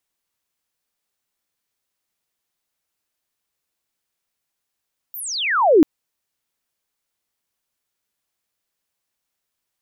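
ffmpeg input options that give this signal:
-f lavfi -i "aevalsrc='pow(10,(-29.5+23*t/0.69)/20)*sin(2*PI*16000*0.69/log(280/16000)*(exp(log(280/16000)*t/0.69)-1))':d=0.69:s=44100"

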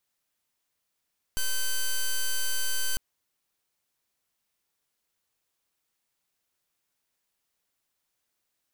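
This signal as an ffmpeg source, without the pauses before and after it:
-f lavfi -i "aevalsrc='0.0531*(2*lt(mod(1540*t,1),0.06)-1)':d=1.6:s=44100"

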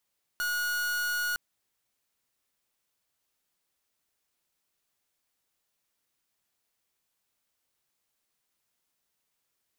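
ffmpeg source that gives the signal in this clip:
-f lavfi -i "aevalsrc='0.0316*(2*lt(mod(1450*t,1),0.44)-1)':d=0.96:s=44100"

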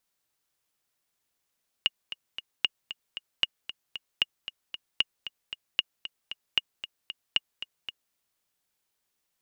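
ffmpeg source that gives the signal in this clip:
-f lavfi -i "aevalsrc='pow(10,(-9-13*gte(mod(t,3*60/229),60/229))/20)*sin(2*PI*2860*mod(t,60/229))*exp(-6.91*mod(t,60/229)/0.03)':d=6.28:s=44100"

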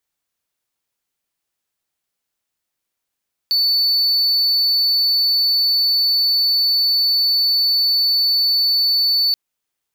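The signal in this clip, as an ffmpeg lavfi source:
-f lavfi -i "aevalsrc='0.266*(1-4*abs(mod(4490*t+0.25,1)-0.5))':d=5.83:s=44100"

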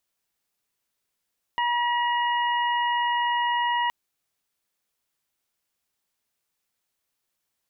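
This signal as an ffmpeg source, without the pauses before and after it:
-f lavfi -i "aevalsrc='0.075*sin(2*PI*959*t)+0.0376*sin(2*PI*1918*t)+0.0251*sin(2*PI*2877*t)':d=2.32:s=44100"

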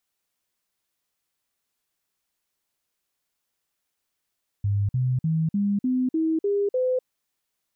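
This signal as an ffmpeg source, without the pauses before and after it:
-f lavfi -i "aevalsrc='0.1*clip(min(mod(t,0.3),0.25-mod(t,0.3))/0.005,0,1)*sin(2*PI*101*pow(2,floor(t/0.3)/3)*mod(t,0.3))':d=2.4:s=44100"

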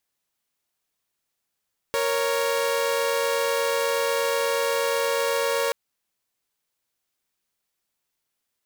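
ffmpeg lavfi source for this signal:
-f lavfi -i "aevalsrc='0.0794*((2*mod(466.16*t,1)-1)+(2*mod(554.37*t,1)-1))':d=3.78:s=44100"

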